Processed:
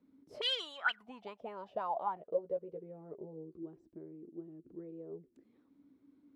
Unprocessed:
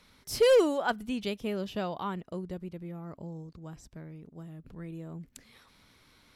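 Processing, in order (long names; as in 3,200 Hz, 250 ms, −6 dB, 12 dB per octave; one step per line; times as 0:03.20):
envelope filter 270–3,400 Hz, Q 13, up, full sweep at −22.5 dBFS
0:02.15–0:03.63: double-tracking delay 13 ms −4.5 dB
level +13 dB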